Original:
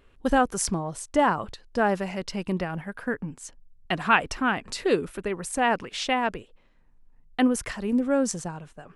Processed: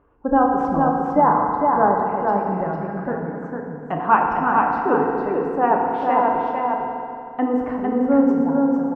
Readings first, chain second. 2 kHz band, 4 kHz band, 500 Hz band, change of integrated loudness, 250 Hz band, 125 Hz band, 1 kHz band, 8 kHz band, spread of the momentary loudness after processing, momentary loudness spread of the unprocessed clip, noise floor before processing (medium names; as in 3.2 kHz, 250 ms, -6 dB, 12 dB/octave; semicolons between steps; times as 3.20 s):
-1.0 dB, under -15 dB, +6.5 dB, +6.5 dB, +7.0 dB, +4.0 dB, +10.0 dB, under -30 dB, 10 LU, 11 LU, -59 dBFS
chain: tracing distortion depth 0.034 ms; high-pass 45 Hz; spectral gate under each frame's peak -25 dB strong; resonant low-pass 1 kHz, resonance Q 2.1; delay 453 ms -4 dB; FDN reverb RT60 2.6 s, high-frequency decay 0.8×, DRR 0 dB